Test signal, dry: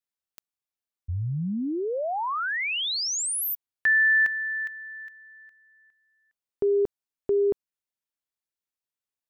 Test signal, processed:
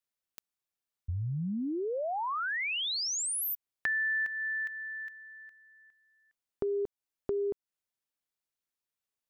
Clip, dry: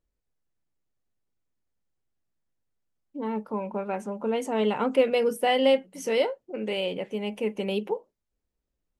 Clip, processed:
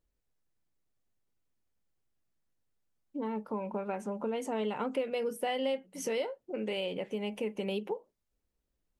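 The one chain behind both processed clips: compression 3:1, threshold -33 dBFS

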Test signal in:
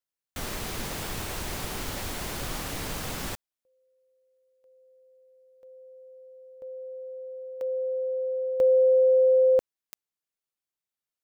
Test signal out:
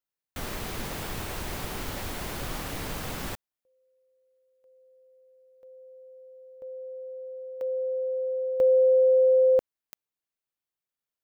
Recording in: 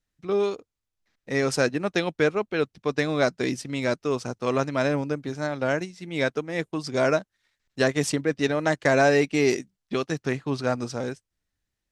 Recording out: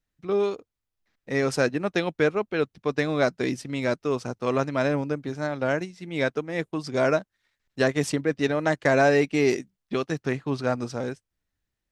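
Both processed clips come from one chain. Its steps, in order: peaking EQ 7.1 kHz -4 dB 2 oct

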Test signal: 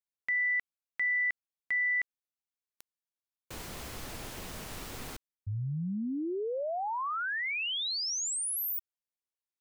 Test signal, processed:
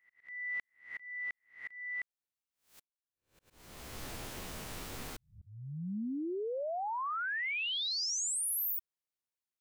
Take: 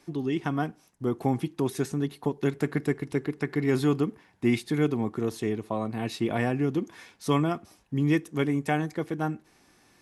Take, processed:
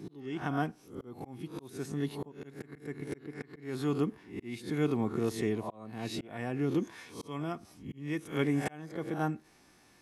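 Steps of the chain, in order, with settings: reverse spectral sustain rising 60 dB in 0.39 s; slow attack 555 ms; trim -3 dB

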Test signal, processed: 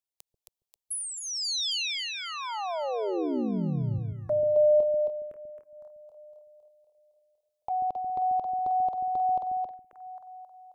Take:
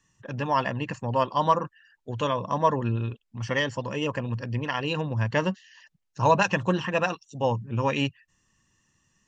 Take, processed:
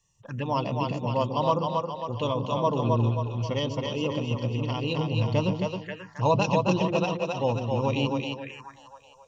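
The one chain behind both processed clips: two-band feedback delay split 410 Hz, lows 138 ms, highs 268 ms, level -3 dB; touch-sensitive phaser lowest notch 260 Hz, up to 1.7 kHz, full sweep at -25.5 dBFS

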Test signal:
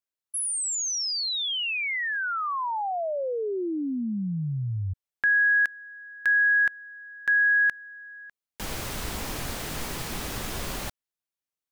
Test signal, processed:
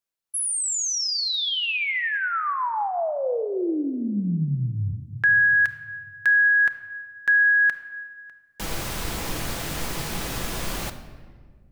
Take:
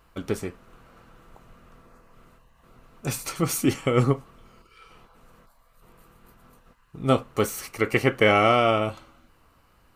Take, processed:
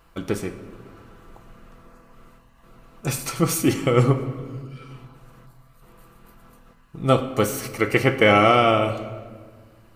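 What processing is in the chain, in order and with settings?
simulated room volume 1900 m³, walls mixed, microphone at 0.73 m; trim +2.5 dB

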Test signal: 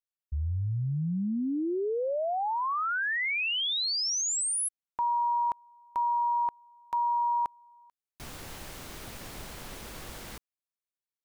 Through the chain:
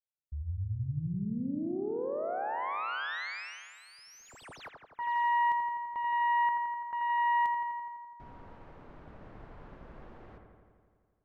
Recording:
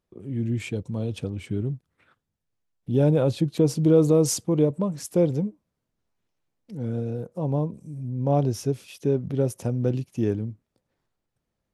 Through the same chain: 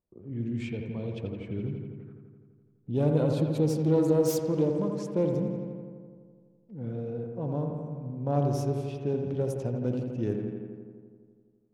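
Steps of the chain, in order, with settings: self-modulated delay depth 0.11 ms; feedback echo behind a low-pass 84 ms, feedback 75%, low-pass 2.5 kHz, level -5 dB; level-controlled noise filter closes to 930 Hz, open at -18 dBFS; trim -6.5 dB

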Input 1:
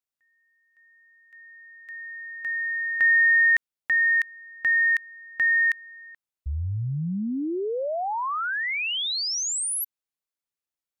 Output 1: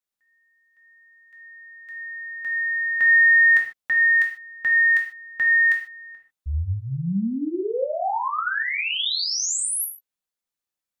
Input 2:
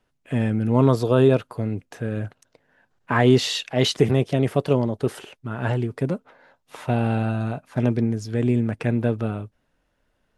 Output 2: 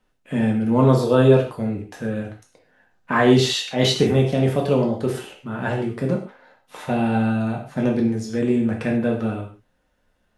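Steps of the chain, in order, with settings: gated-style reverb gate 170 ms falling, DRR -0.5 dB; trim -1 dB

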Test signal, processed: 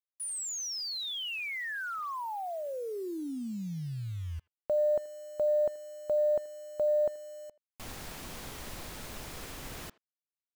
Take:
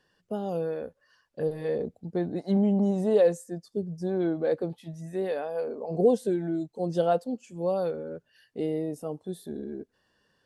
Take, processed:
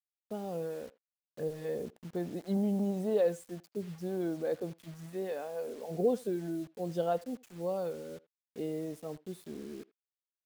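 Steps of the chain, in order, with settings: bit crusher 8-bit; speakerphone echo 80 ms, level -21 dB; trim -7 dB

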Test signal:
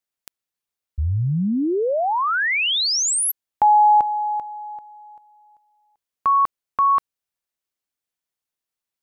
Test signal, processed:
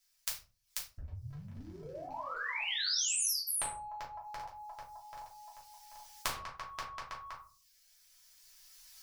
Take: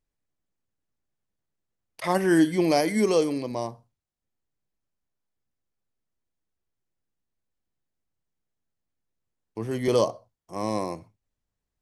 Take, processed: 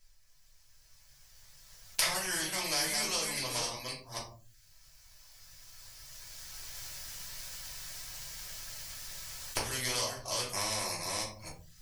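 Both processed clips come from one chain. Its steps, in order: chunks repeated in reverse 261 ms, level -7 dB; recorder AGC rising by 9.1 dB/s, up to +29 dB; reverb removal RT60 0.54 s; peaking EQ 5.3 kHz +7 dB 0.59 oct; compression 2:1, threshold -29 dBFS; amplifier tone stack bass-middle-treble 10-0-10; simulated room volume 140 m³, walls furnished, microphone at 2.9 m; spectrum-flattening compressor 2:1

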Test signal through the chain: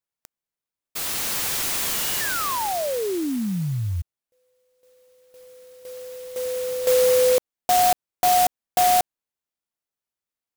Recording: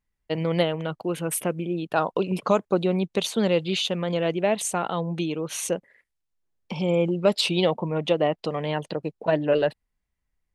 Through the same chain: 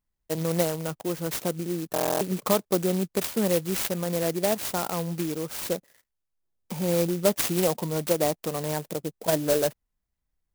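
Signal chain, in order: buffer glitch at 1.93 s, samples 1024, times 11; sampling jitter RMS 0.1 ms; trim -2 dB

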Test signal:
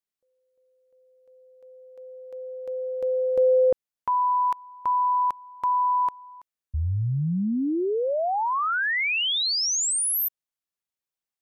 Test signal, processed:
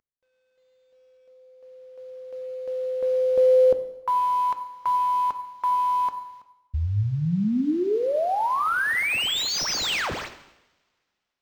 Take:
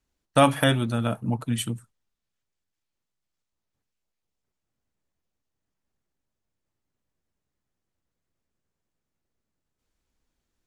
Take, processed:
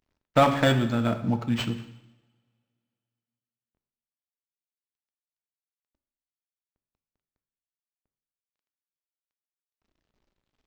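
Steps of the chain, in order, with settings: CVSD coder 64 kbps; two-slope reverb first 0.87 s, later 2.6 s, from -27 dB, DRR 8.5 dB; decimation joined by straight lines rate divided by 4×; trim +1 dB

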